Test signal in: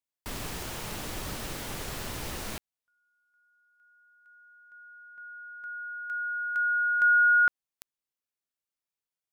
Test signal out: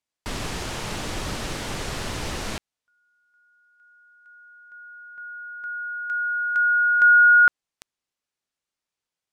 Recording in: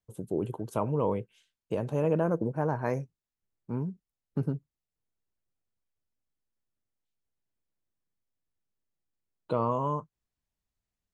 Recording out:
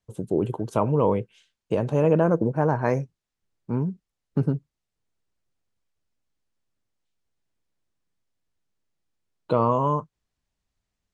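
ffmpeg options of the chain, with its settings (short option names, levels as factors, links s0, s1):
-af "lowpass=8000,volume=2.24"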